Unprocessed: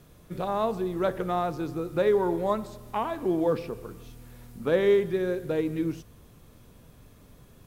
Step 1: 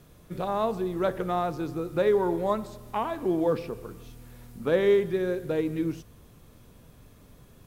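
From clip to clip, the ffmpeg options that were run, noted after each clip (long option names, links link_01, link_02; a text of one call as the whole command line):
ffmpeg -i in.wav -af anull out.wav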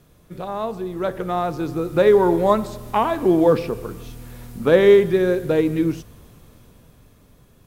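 ffmpeg -i in.wav -af "dynaudnorm=framelen=250:gausssize=13:maxgain=11.5dB" out.wav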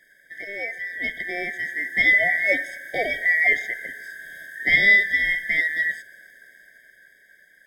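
ffmpeg -i in.wav -af "aeval=exprs='val(0)*sin(2*PI*1600*n/s)':channel_layout=same,equalizer=frequency=84:width=1.3:gain=-11.5,afftfilt=real='re*eq(mod(floor(b*sr/1024/770),2),0)':imag='im*eq(mod(floor(b*sr/1024/770),2),0)':win_size=1024:overlap=0.75,volume=2dB" out.wav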